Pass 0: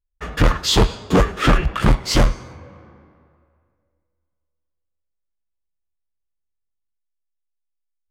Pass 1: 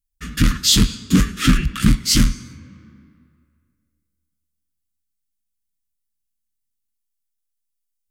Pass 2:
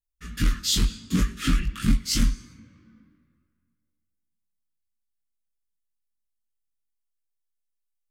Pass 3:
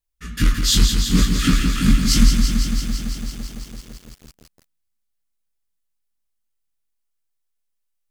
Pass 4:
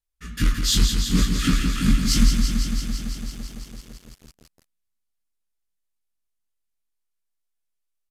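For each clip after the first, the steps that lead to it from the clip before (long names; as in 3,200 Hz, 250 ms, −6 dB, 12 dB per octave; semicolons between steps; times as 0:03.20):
drawn EQ curve 110 Hz 0 dB, 250 Hz +8 dB, 390 Hz −11 dB, 750 Hz −27 dB, 1,300 Hz −4 dB, 9,900 Hz +12 dB; level −1 dB
multi-voice chorus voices 6, 0.7 Hz, delay 20 ms, depth 2.9 ms; level −6 dB
feedback echo at a low word length 168 ms, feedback 80%, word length 8 bits, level −6 dB; level +5.5 dB
downsampling to 32,000 Hz; level −3.5 dB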